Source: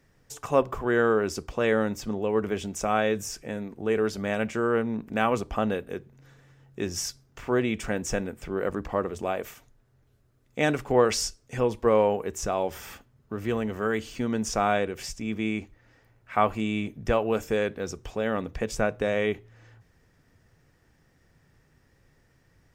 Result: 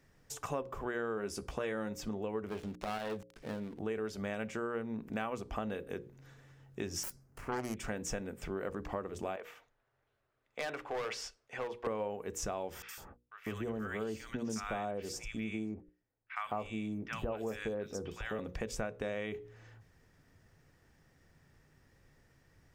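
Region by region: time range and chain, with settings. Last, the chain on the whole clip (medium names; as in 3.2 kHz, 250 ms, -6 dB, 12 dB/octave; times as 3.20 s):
1.16–1.89 s: peaking EQ 10 kHz +10 dB 0.22 oct + doubling 15 ms -8.5 dB
2.49–3.79 s: dead-time distortion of 0.19 ms + treble shelf 7 kHz -9.5 dB + transformer saturation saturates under 970 Hz
7.03–7.77 s: self-modulated delay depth 0.8 ms + peaking EQ 3.7 kHz -10.5 dB 1.3 oct + band-stop 3.6 kHz, Q 11
9.36–11.87 s: three-band isolator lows -17 dB, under 470 Hz, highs -16 dB, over 3.7 kHz + hard clipper -25.5 dBFS
12.82–18.39 s: gate -50 dBFS, range -23 dB + three bands offset in time mids, highs, lows 60/150 ms, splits 1.2/3.6 kHz
whole clip: hum notches 60/120/180/240/300/360/420/480/540 Hz; compression 4:1, threshold -33 dBFS; trim -2.5 dB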